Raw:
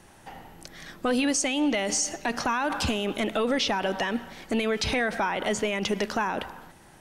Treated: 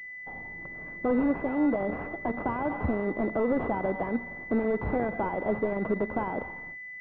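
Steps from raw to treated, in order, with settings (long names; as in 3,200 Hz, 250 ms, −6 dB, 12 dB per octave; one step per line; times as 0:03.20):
noise gate −49 dBFS, range −14 dB
switching amplifier with a slow clock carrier 2,000 Hz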